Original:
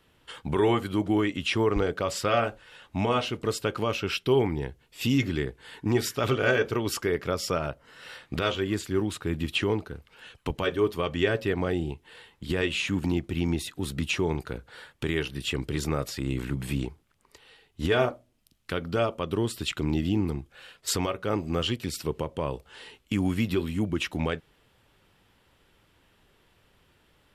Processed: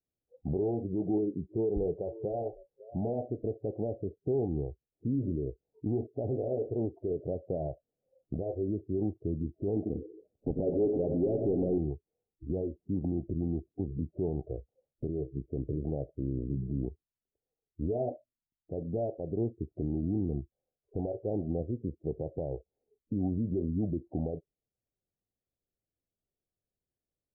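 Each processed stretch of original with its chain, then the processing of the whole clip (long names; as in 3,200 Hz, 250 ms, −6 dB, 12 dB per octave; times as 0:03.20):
0:00.88–0:03.02: EQ curve with evenly spaced ripples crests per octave 0.76, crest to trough 7 dB + single-tap delay 550 ms −22.5 dB
0:09.76–0:11.78: parametric band 280 Hz +9.5 dB 2.1 octaves + hard clipping −15 dBFS + echo with a time of its own for lows and highs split 520 Hz, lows 93 ms, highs 123 ms, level −10 dB
whole clip: noise reduction from a noise print of the clip's start 29 dB; brickwall limiter −22 dBFS; Butterworth low-pass 770 Hz 96 dB per octave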